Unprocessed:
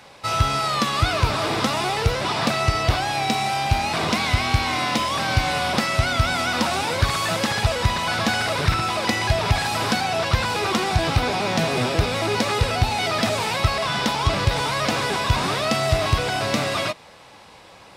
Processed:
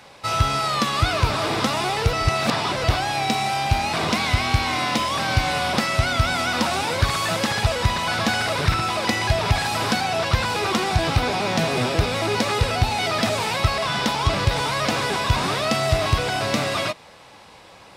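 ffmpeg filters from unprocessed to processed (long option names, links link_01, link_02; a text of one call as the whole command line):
ffmpeg -i in.wav -filter_complex "[0:a]asplit=3[link_01][link_02][link_03];[link_01]atrim=end=2.132[link_04];[link_02]atrim=start=2.128:end=2.842,asetpts=PTS-STARTPTS,areverse[link_05];[link_03]atrim=start=2.838[link_06];[link_04][link_05]acrossfade=duration=0.004:curve1=hsin:curve2=hsin[link_07];[link_07][link_06]acrossfade=duration=0.004:curve1=hsin:curve2=hsin" out.wav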